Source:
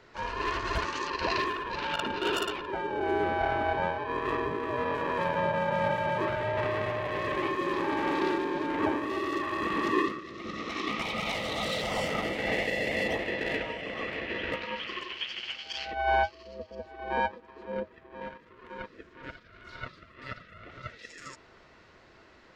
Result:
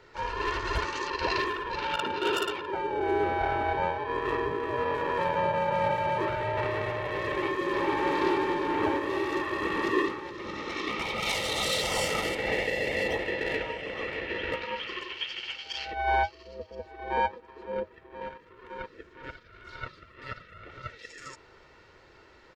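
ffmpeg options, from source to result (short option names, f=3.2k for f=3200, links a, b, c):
-filter_complex "[0:a]asettb=1/sr,asplit=3[a][b][c];[a]atrim=end=1.964[d];[b]atrim=start=1.96:end=2.79,asetpts=PTS-STARTPTS,afade=t=in:d=0.004:c=qsin,afade=t=out:st=0.826:d=0.004:c=qsin,highpass=84[e];[c]atrim=start=2.786[f];[d][e]acrossfade=d=0.004:c1=hsin:c2=qsin[g];[g][f]acrossfade=d=0.004:c1=qsin:c2=hsin,asplit=2[h][i];[i]afade=t=in:st=7.3:d=0.01,afade=t=out:st=8.1:d=0.01,aecho=0:1:440|880|1320|1760|2200|2640|3080|3520|3960|4400|4840|5280:0.630957|0.473218|0.354914|0.266185|0.199639|0.149729|0.112297|0.0842226|0.063167|0.0473752|0.0355314|0.0266486[j];[h][j]amix=inputs=2:normalize=0,asettb=1/sr,asplit=3[k][l][m];[k]atrim=end=11.224[n];[l]atrim=start=11.22:end=12.35,asetpts=PTS-STARTPTS,afade=t=in:d=0.004:c=qsin,afade=t=out:st=1.126:d=0.004:c=qsin,equalizer=f=10k:w=0.41:g=12[o];[m]atrim=start=12.346[p];[n][o]acrossfade=d=0.004:c1=hsin:c2=qsin[q];[q][p]acrossfade=d=0.004:c1=qsin:c2=hsin,aecho=1:1:2.2:0.4"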